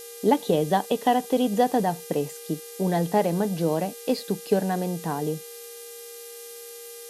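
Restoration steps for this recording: de-hum 401.6 Hz, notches 18; notch 470 Hz, Q 30; denoiser 28 dB, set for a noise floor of -41 dBFS

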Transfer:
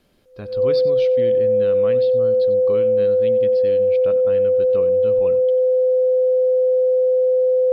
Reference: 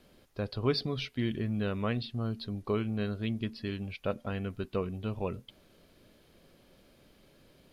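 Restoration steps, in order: notch 510 Hz, Q 30; inverse comb 94 ms -17.5 dB

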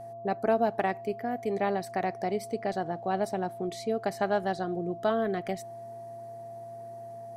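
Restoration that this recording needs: de-hum 116.3 Hz, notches 10; notch 680 Hz, Q 30

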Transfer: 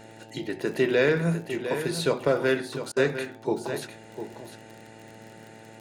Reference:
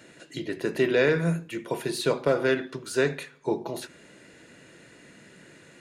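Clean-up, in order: de-click; de-hum 110.9 Hz, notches 8; interpolate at 2.92, 44 ms; inverse comb 0.703 s -10 dB

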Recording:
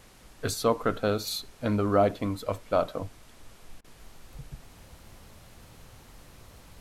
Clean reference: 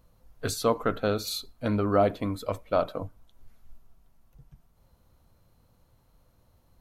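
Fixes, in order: interpolate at 3.81, 32 ms; noise print and reduce 11 dB; gain 0 dB, from 3.99 s -10 dB

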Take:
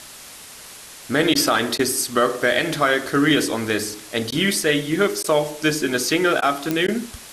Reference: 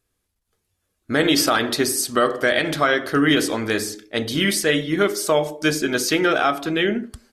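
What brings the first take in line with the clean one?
de-click; interpolate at 1.34/1.78/4.31/5.23/6.41/6.87, 10 ms; noise print and reduce 30 dB

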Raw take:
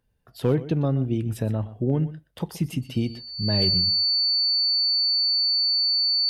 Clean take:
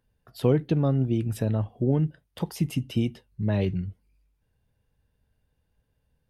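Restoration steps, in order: clip repair -12 dBFS; notch 4500 Hz, Q 30; inverse comb 0.123 s -16 dB

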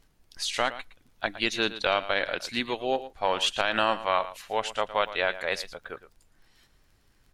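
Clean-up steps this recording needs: de-click; expander -54 dBFS, range -21 dB; inverse comb 0.113 s -14.5 dB

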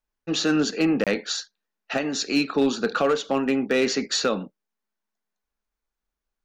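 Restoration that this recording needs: clip repair -13.5 dBFS; interpolate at 1.04, 27 ms

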